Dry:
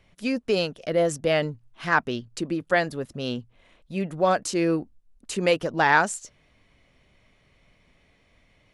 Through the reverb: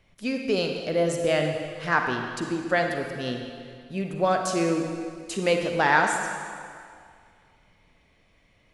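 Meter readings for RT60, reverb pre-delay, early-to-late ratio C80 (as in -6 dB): 2.2 s, 39 ms, 5.0 dB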